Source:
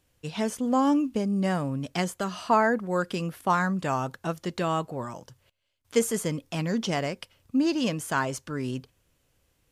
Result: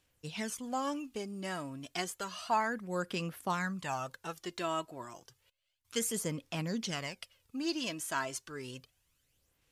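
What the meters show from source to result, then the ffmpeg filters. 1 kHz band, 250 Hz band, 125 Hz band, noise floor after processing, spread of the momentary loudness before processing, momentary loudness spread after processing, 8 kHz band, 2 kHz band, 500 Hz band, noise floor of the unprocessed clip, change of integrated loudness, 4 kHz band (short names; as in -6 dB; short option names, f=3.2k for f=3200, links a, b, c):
-8.5 dB, -12.5 dB, -11.0 dB, -77 dBFS, 11 LU, 11 LU, -2.5 dB, -7.0 dB, -10.5 dB, -71 dBFS, -9.0 dB, -3.5 dB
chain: -af "aphaser=in_gain=1:out_gain=1:delay=3.1:decay=0.5:speed=0.31:type=sinusoidal,tiltshelf=f=1.2k:g=-5,volume=-8.5dB"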